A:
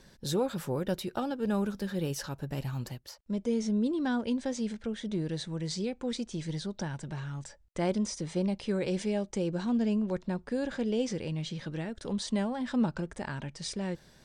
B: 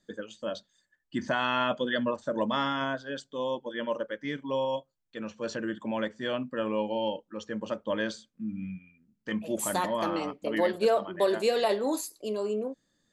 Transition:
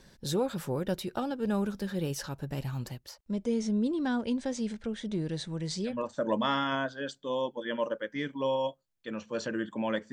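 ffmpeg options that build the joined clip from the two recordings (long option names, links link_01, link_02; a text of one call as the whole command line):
ffmpeg -i cue0.wav -i cue1.wav -filter_complex "[0:a]apad=whole_dur=10.12,atrim=end=10.12,atrim=end=6.1,asetpts=PTS-STARTPTS[link_01];[1:a]atrim=start=1.93:end=6.21,asetpts=PTS-STARTPTS[link_02];[link_01][link_02]acrossfade=duration=0.26:curve1=tri:curve2=tri" out.wav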